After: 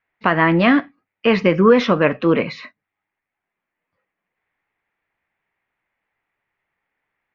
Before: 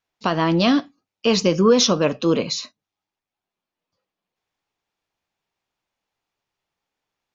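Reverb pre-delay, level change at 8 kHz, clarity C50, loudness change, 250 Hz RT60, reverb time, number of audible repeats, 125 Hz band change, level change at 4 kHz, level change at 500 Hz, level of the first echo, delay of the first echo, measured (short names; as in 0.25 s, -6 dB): none, n/a, none, +3.0 dB, none, none, none, +2.5 dB, -6.5 dB, +3.0 dB, none, none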